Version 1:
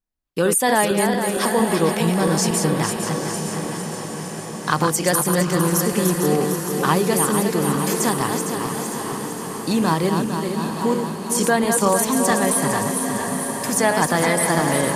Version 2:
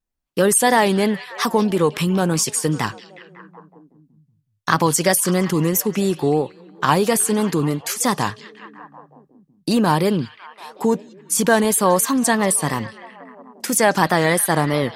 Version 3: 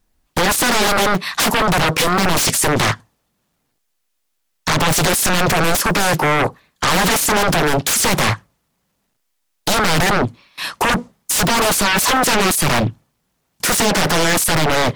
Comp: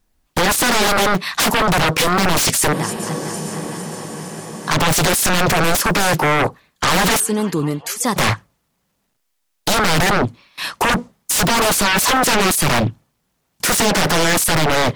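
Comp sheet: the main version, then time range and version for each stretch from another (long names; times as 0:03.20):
3
0:02.73–0:04.71: punch in from 1
0:07.20–0:08.16: punch in from 2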